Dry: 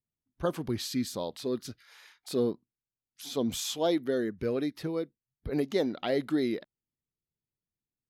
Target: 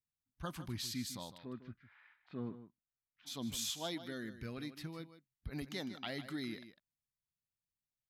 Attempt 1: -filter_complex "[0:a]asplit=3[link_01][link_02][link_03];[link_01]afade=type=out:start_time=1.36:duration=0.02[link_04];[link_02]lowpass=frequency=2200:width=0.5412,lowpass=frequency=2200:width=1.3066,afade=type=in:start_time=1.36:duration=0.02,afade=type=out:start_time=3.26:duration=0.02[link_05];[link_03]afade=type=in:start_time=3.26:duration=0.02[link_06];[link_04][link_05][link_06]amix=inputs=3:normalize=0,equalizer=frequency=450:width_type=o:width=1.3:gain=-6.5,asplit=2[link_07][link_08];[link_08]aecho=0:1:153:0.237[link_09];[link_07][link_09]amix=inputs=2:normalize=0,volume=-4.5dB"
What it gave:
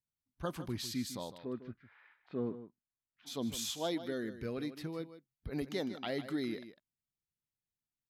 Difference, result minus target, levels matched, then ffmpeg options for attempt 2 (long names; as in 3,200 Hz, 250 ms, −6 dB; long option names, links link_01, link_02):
500 Hz band +5.0 dB
-filter_complex "[0:a]asplit=3[link_01][link_02][link_03];[link_01]afade=type=out:start_time=1.36:duration=0.02[link_04];[link_02]lowpass=frequency=2200:width=0.5412,lowpass=frequency=2200:width=1.3066,afade=type=in:start_time=1.36:duration=0.02,afade=type=out:start_time=3.26:duration=0.02[link_05];[link_03]afade=type=in:start_time=3.26:duration=0.02[link_06];[link_04][link_05][link_06]amix=inputs=3:normalize=0,equalizer=frequency=450:width_type=o:width=1.3:gain=-17.5,asplit=2[link_07][link_08];[link_08]aecho=0:1:153:0.237[link_09];[link_07][link_09]amix=inputs=2:normalize=0,volume=-4.5dB"